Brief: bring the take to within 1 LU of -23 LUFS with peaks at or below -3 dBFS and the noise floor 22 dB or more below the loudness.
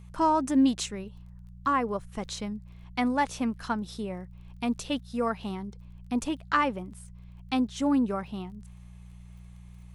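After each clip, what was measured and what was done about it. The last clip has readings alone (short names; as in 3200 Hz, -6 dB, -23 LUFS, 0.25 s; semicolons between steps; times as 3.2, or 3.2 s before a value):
ticks 26/s; hum 60 Hz; harmonics up to 180 Hz; hum level -44 dBFS; loudness -29.5 LUFS; peak -10.5 dBFS; loudness target -23.0 LUFS
-> de-click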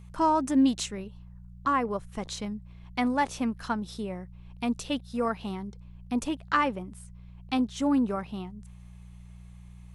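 ticks 0.10/s; hum 60 Hz; harmonics up to 180 Hz; hum level -45 dBFS
-> de-hum 60 Hz, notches 3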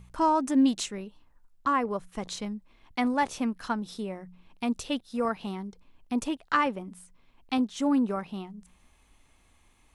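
hum none; loudness -29.5 LUFS; peak -10.5 dBFS; loudness target -23.0 LUFS
-> gain +6.5 dB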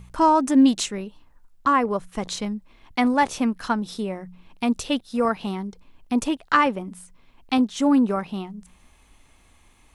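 loudness -23.0 LUFS; peak -4.0 dBFS; noise floor -57 dBFS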